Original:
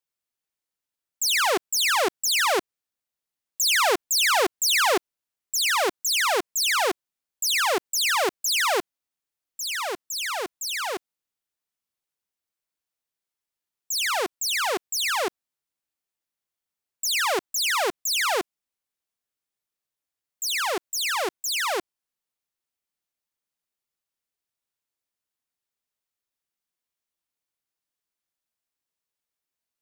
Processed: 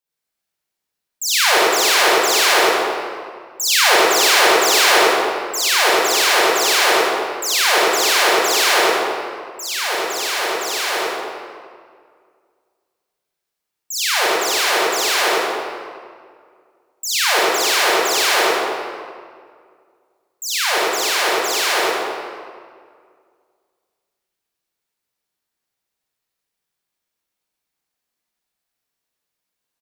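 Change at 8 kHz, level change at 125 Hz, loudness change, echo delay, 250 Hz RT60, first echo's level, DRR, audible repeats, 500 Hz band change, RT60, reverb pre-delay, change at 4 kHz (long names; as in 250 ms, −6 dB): +7.0 dB, can't be measured, +8.0 dB, 97 ms, 2.2 s, −2.5 dB, −9.0 dB, 1, +10.0 dB, 2.0 s, 31 ms, +8.5 dB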